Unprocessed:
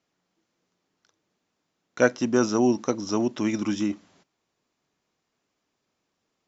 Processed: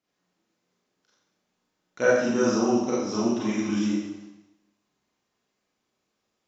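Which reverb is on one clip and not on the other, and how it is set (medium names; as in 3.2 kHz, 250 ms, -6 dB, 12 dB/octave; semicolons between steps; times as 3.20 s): Schroeder reverb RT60 0.92 s, combs from 30 ms, DRR -8 dB; trim -8.5 dB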